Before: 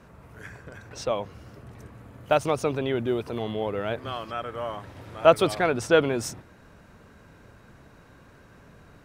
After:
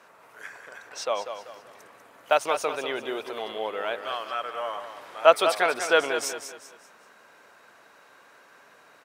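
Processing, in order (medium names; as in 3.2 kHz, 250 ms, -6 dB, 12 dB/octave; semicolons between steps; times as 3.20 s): high-pass 650 Hz 12 dB/octave; feedback delay 194 ms, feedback 36%, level -9 dB; trim +3 dB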